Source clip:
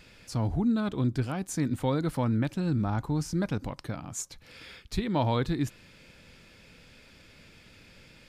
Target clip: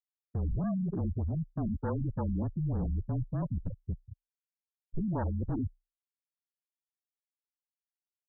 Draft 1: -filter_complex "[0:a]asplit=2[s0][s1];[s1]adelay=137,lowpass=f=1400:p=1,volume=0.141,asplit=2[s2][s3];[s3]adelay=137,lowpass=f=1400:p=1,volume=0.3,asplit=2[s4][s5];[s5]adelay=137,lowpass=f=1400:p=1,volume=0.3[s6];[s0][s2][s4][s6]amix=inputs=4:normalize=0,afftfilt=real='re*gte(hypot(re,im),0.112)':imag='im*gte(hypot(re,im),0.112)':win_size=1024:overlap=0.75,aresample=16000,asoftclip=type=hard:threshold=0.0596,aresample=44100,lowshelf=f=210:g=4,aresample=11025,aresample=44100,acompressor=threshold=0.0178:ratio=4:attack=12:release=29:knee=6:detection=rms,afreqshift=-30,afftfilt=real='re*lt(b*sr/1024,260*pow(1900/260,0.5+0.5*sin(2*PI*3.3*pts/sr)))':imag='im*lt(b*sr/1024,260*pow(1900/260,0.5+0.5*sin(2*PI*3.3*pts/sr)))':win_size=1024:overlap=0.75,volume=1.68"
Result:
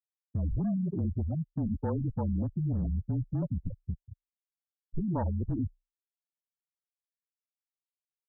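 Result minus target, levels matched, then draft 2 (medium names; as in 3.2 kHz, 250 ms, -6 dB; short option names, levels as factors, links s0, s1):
hard clipper: distortion -8 dB
-filter_complex "[0:a]asplit=2[s0][s1];[s1]adelay=137,lowpass=f=1400:p=1,volume=0.141,asplit=2[s2][s3];[s3]adelay=137,lowpass=f=1400:p=1,volume=0.3,asplit=2[s4][s5];[s5]adelay=137,lowpass=f=1400:p=1,volume=0.3[s6];[s0][s2][s4][s6]amix=inputs=4:normalize=0,afftfilt=real='re*gte(hypot(re,im),0.112)':imag='im*gte(hypot(re,im),0.112)':win_size=1024:overlap=0.75,aresample=16000,asoftclip=type=hard:threshold=0.0237,aresample=44100,lowshelf=f=210:g=4,aresample=11025,aresample=44100,acompressor=threshold=0.0178:ratio=4:attack=12:release=29:knee=6:detection=rms,afreqshift=-30,afftfilt=real='re*lt(b*sr/1024,260*pow(1900/260,0.5+0.5*sin(2*PI*3.3*pts/sr)))':imag='im*lt(b*sr/1024,260*pow(1900/260,0.5+0.5*sin(2*PI*3.3*pts/sr)))':win_size=1024:overlap=0.75,volume=1.68"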